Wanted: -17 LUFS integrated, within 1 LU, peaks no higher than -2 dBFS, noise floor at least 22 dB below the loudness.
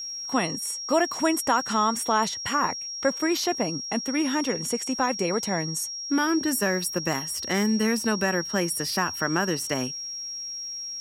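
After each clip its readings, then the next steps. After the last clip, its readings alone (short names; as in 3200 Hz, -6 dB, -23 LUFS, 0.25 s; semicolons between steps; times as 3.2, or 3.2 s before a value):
ticks 26/s; steady tone 5600 Hz; tone level -32 dBFS; loudness -25.5 LUFS; peak -9.5 dBFS; loudness target -17.0 LUFS
-> de-click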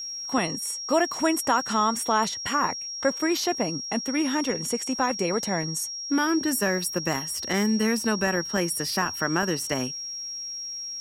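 ticks 0.18/s; steady tone 5600 Hz; tone level -32 dBFS
-> notch 5600 Hz, Q 30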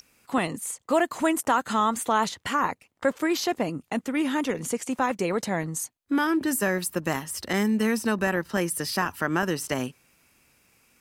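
steady tone none; loudness -26.5 LUFS; peak -10.0 dBFS; loudness target -17.0 LUFS
-> gain +9.5 dB; limiter -2 dBFS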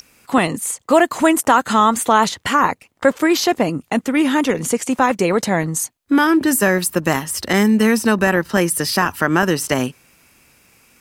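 loudness -17.0 LUFS; peak -2.0 dBFS; noise floor -59 dBFS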